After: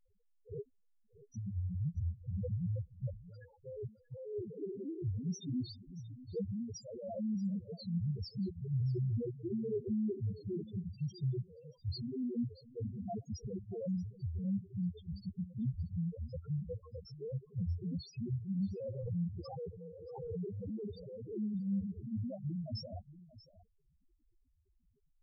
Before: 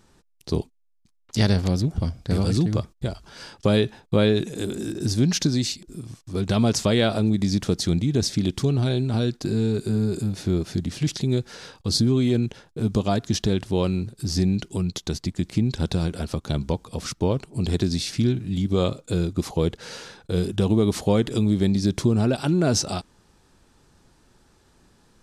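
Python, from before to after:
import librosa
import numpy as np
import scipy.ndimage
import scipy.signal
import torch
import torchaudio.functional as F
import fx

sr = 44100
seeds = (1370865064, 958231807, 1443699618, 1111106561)

y = fx.peak_eq(x, sr, hz=500.0, db=7.0, octaves=0.57)
y = fx.over_compress(y, sr, threshold_db=-21.0, ratio=-0.5)
y = fx.spec_topn(y, sr, count=1)
y = y + 10.0 ** (-17.5 / 20.0) * np.pad(y, (int(632 * sr / 1000.0), 0))[:len(y)]
y = fx.pre_swell(y, sr, db_per_s=35.0, at=(18.55, 21.03), fade=0.02)
y = y * 10.0 ** (-6.5 / 20.0)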